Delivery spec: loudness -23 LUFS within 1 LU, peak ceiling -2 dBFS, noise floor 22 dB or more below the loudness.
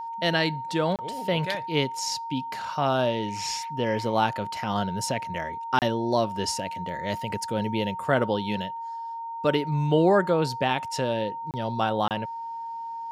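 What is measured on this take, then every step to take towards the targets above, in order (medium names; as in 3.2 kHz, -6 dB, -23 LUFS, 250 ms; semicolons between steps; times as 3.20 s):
dropouts 4; longest dropout 28 ms; steady tone 920 Hz; tone level -32 dBFS; loudness -27.0 LUFS; peak level -8.0 dBFS; loudness target -23.0 LUFS
-> interpolate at 0.96/5.79/11.51/12.08 s, 28 ms; band-stop 920 Hz, Q 30; trim +4 dB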